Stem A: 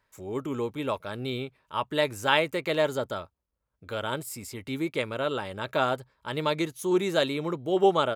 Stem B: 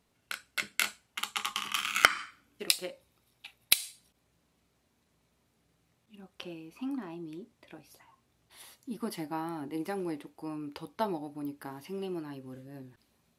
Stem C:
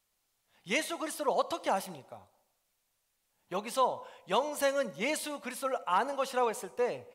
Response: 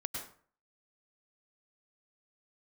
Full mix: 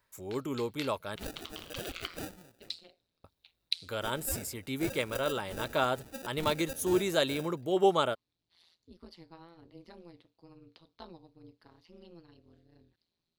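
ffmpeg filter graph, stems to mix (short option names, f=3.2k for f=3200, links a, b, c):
-filter_complex "[0:a]volume=-3.5dB,asplit=3[a][b][c];[a]atrim=end=1.16,asetpts=PTS-STARTPTS,afade=t=out:st=1.156:d=0.004:c=hsin[d];[b]atrim=start=1.16:end=3.24,asetpts=PTS-STARTPTS,volume=0[e];[c]atrim=start=3.24,asetpts=PTS-STARTPTS,afade=t=in:d=0.004:c=hsin[f];[d][e][f]concat=n=3:v=0:a=1[g];[1:a]equalizer=f=140:t=o:w=2.7:g=5,tremolo=f=170:d=1,lowpass=f=4.2k:t=q:w=3.7,volume=-15.5dB[h];[2:a]bandreject=f=500:w=12,acrusher=samples=41:mix=1:aa=0.000001,adelay=500,volume=-11dB[i];[g][h][i]amix=inputs=3:normalize=0,highshelf=f=7.3k:g=11"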